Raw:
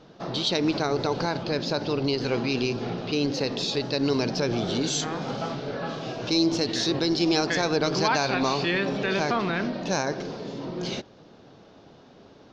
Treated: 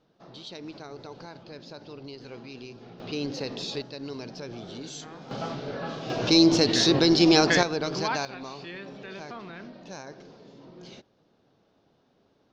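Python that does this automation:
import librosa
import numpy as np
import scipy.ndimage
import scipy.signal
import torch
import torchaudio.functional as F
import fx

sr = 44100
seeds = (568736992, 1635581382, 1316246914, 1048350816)

y = fx.gain(x, sr, db=fx.steps((0.0, -16.5), (3.0, -6.0), (3.82, -13.0), (5.31, -2.5), (6.1, 4.5), (7.63, -5.0), (8.25, -15.0)))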